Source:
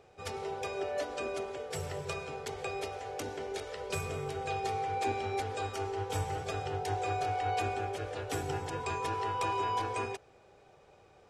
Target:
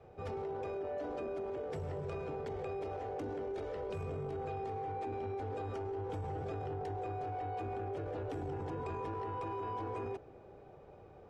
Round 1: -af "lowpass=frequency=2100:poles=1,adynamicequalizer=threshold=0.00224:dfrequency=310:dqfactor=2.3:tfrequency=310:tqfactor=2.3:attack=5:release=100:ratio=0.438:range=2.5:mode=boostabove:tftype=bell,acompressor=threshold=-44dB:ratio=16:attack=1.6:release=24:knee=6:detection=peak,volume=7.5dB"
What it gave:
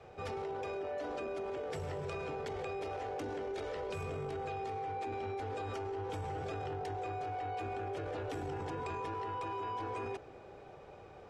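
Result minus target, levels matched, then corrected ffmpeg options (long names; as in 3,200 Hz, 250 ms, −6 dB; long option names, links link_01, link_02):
2,000 Hz band +5.5 dB
-af "lowpass=frequency=530:poles=1,adynamicequalizer=threshold=0.00224:dfrequency=310:dqfactor=2.3:tfrequency=310:tqfactor=2.3:attack=5:release=100:ratio=0.438:range=2.5:mode=boostabove:tftype=bell,acompressor=threshold=-44dB:ratio=16:attack=1.6:release=24:knee=6:detection=peak,volume=7.5dB"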